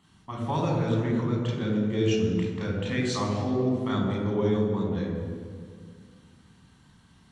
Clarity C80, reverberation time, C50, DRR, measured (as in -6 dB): 3.0 dB, 2.0 s, 1.5 dB, -3.5 dB